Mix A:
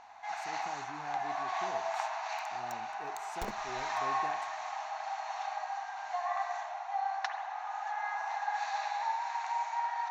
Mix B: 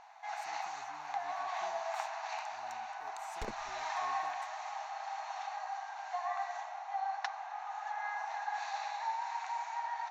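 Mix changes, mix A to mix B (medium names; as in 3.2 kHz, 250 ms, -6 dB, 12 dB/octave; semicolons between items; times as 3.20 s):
speech: add pre-emphasis filter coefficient 0.8; second sound: add distance through air 58 m; reverb: off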